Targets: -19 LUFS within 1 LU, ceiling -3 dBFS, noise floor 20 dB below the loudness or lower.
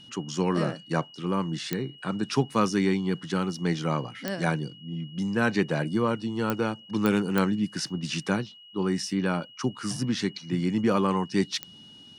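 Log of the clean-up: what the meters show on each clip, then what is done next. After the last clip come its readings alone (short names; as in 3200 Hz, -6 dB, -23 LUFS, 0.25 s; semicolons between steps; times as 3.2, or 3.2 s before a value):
clicks 6; steady tone 2900 Hz; tone level -48 dBFS; loudness -28.0 LUFS; peak -6.0 dBFS; loudness target -19.0 LUFS
-> de-click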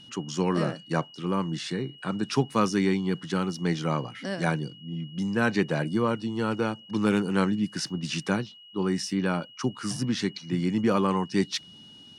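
clicks 0; steady tone 2900 Hz; tone level -48 dBFS
-> notch 2900 Hz, Q 30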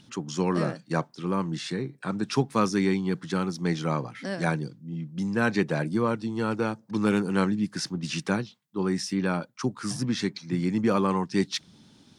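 steady tone none; loudness -28.0 LUFS; peak -9.0 dBFS; loudness target -19.0 LUFS
-> gain +9 dB; limiter -3 dBFS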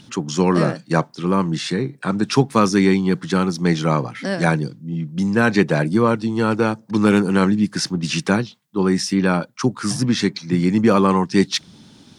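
loudness -19.0 LUFS; peak -3.0 dBFS; noise floor -49 dBFS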